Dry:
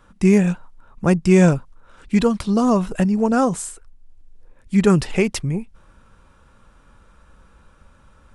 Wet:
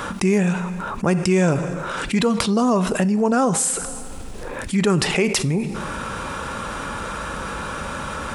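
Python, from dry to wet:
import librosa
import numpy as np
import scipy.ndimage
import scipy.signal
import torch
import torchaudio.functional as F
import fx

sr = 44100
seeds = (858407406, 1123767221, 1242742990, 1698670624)

y = fx.highpass(x, sr, hz=250.0, slope=6)
y = fx.rev_double_slope(y, sr, seeds[0], early_s=0.65, late_s=2.0, knee_db=-27, drr_db=16.0)
y = fx.env_flatten(y, sr, amount_pct=70)
y = y * 10.0 ** (-3.0 / 20.0)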